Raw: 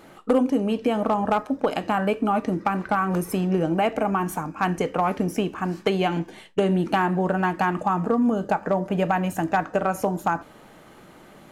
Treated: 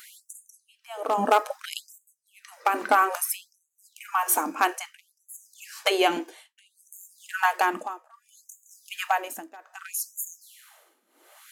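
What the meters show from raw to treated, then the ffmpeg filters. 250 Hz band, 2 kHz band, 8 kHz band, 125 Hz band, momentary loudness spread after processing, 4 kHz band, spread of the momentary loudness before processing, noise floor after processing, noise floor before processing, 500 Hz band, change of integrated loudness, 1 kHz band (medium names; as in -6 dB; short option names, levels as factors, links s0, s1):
-15.0 dB, 0.0 dB, +10.0 dB, under -25 dB, 22 LU, +3.5 dB, 4 LU, -74 dBFS, -49 dBFS, -7.5 dB, -2.5 dB, -2.0 dB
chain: -af "crystalizer=i=2.5:c=0,tremolo=f=0.68:d=0.96,afftfilt=real='re*gte(b*sr/1024,210*pow(6400/210,0.5+0.5*sin(2*PI*0.61*pts/sr)))':imag='im*gte(b*sr/1024,210*pow(6400/210,0.5+0.5*sin(2*PI*0.61*pts/sr)))':win_size=1024:overlap=0.75,volume=1.41"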